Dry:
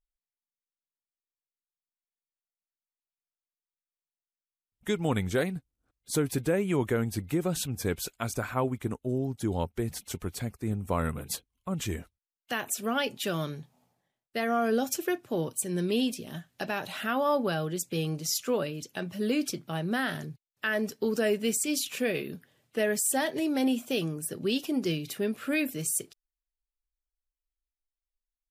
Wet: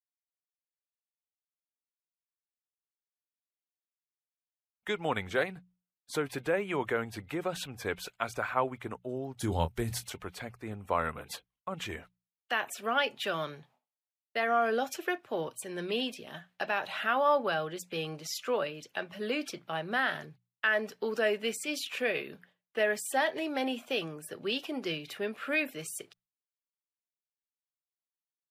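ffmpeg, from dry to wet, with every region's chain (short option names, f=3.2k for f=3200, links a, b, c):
-filter_complex "[0:a]asettb=1/sr,asplit=3[a][b][c];[a]atrim=end=9.394[d];[b]atrim=start=9.39:end=10.1,asetpts=PTS-STARTPTS,afade=t=in:d=0.004:c=qsin,afade=t=out:st=0.706:d=0.004:c=qsin,bass=f=250:g=12,treble=f=4k:g=13,asplit=2[e][f];[f]adelay=25,volume=-10.5dB[g];[e][g]amix=inputs=2:normalize=0,atrim=end_sample=31311[h];[c]atrim=start=10.096[i];[d][h]acrossfade=d=0.004:c1=hsin:c2=qsin[j];[j][i]acrossfade=d=0.004:c1=qsin:c2=hsin,agate=range=-33dB:threshold=-52dB:ratio=3:detection=peak,acrossover=split=510 3700:gain=0.2 1 0.178[k][l][m];[k][l][m]amix=inputs=3:normalize=0,bandreject=f=60:t=h:w=6,bandreject=f=120:t=h:w=6,bandreject=f=180:t=h:w=6,volume=3dB"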